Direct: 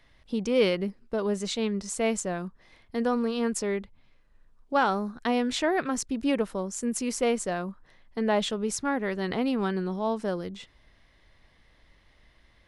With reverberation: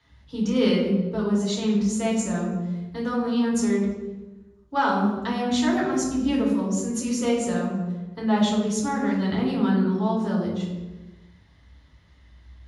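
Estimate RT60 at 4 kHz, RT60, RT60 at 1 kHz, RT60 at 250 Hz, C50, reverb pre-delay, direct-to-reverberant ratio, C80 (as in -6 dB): 0.85 s, 1.2 s, 1.0 s, 1.4 s, 3.5 dB, 3 ms, -4.5 dB, 5.5 dB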